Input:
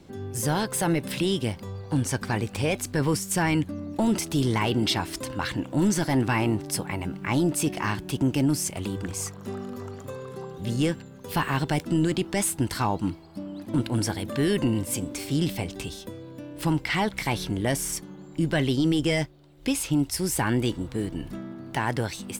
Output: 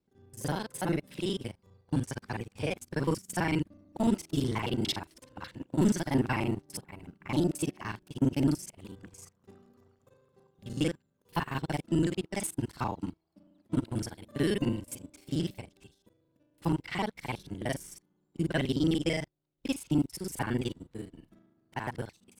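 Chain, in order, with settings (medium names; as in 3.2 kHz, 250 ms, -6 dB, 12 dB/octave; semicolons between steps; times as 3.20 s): time reversed locally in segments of 37 ms; upward expansion 2.5:1, over -40 dBFS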